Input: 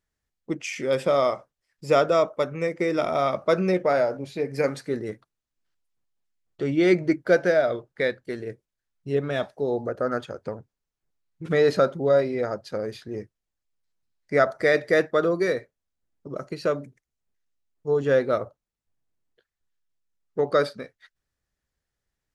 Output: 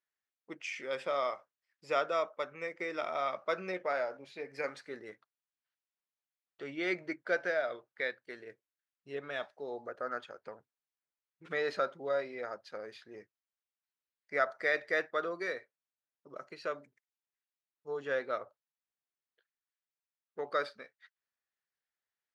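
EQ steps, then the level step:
resonant band-pass 1,900 Hz, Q 0.67
−6.0 dB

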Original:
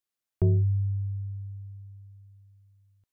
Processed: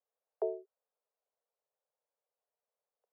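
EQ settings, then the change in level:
Butterworth high-pass 430 Hz 96 dB per octave
Chebyshev low-pass filter 570 Hz, order 2
+11.0 dB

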